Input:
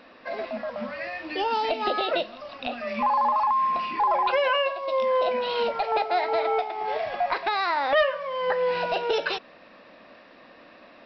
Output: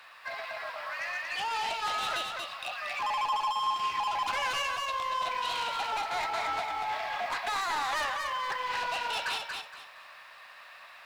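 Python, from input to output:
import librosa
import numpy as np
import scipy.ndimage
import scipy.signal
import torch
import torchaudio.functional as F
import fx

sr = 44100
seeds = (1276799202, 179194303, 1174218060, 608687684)

p1 = scipy.signal.sosfilt(scipy.signal.butter(4, 910.0, 'highpass', fs=sr, output='sos'), x)
p2 = fx.quant_companded(p1, sr, bits=4)
p3 = p1 + F.gain(torch.from_numpy(p2), -11.0).numpy()
p4 = 10.0 ** (-29.5 / 20.0) * np.tanh(p3 / 10.0 ** (-29.5 / 20.0))
p5 = p4 + fx.echo_feedback(p4, sr, ms=233, feedback_pct=27, wet_db=-4.5, dry=0)
y = fx.doppler_dist(p5, sr, depth_ms=0.1)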